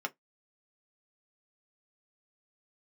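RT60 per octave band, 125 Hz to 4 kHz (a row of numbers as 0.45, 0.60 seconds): 0.15, 0.15, 0.15, 0.15, 0.10, 0.10 seconds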